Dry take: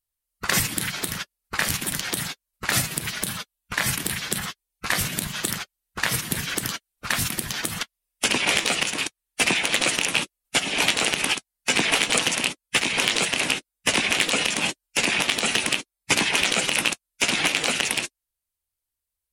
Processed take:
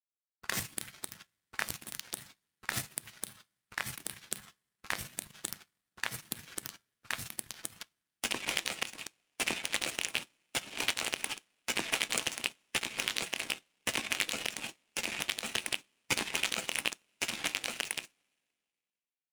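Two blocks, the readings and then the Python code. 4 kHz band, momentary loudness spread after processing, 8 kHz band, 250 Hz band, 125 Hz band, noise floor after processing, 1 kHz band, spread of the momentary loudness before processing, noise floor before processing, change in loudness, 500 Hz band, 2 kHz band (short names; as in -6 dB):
-12.5 dB, 11 LU, -12.0 dB, -15.5 dB, -17.0 dB, under -85 dBFS, -13.5 dB, 10 LU, -85 dBFS, -12.5 dB, -14.0 dB, -13.0 dB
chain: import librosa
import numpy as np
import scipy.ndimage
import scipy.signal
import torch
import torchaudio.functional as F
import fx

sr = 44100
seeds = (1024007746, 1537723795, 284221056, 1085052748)

y = fx.rev_double_slope(x, sr, seeds[0], early_s=0.29, late_s=4.9, knee_db=-21, drr_db=6.5)
y = fx.power_curve(y, sr, exponent=2.0)
y = F.gain(torch.from_numpy(y), -5.0).numpy()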